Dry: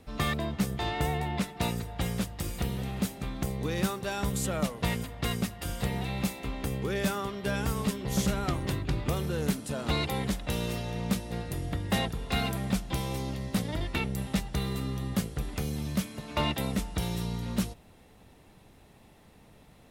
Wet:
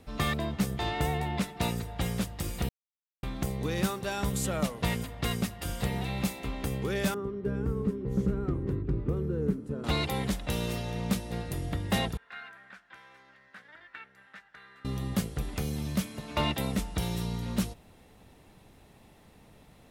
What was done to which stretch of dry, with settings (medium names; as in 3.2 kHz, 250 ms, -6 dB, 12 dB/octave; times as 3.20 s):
2.69–3.23 s: mute
7.14–9.84 s: FFT filter 240 Hz 0 dB, 440 Hz +4 dB, 650 Hz -15 dB, 1.3 kHz -9 dB, 3.4 kHz -24 dB
12.17–14.85 s: band-pass filter 1.6 kHz, Q 5.7